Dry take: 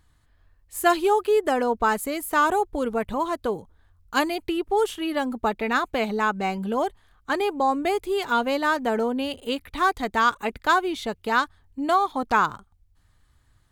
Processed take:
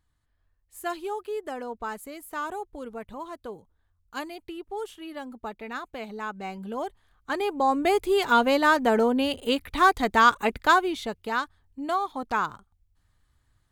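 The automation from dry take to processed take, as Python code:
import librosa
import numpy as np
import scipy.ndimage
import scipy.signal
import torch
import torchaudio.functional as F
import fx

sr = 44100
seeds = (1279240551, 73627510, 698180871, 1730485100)

y = fx.gain(x, sr, db=fx.line((6.03, -12.0), (7.35, -4.0), (8.0, 2.5), (10.55, 2.5), (11.39, -6.0)))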